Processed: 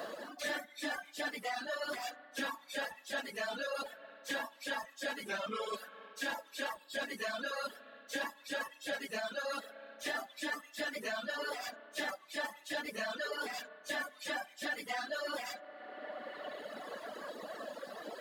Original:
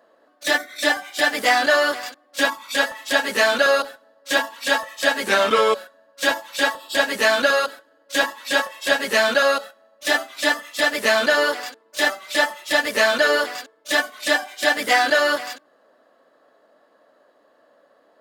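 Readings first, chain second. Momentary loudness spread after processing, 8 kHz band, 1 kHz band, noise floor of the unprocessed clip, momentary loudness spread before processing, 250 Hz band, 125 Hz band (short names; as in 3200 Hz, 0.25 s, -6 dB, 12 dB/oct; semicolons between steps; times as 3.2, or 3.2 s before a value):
7 LU, -18.0 dB, -18.5 dB, -60 dBFS, 9 LU, -15.5 dB, n/a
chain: phase scrambler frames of 50 ms; bell 210 Hz +6 dB 0.5 oct; spring tank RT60 3.7 s, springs 31/57 ms, chirp 65 ms, DRR 19 dB; reverse; compressor 6:1, threshold -27 dBFS, peak gain reduction 15 dB; reverse; reverb removal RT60 1.7 s; three-band squash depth 100%; gain -8.5 dB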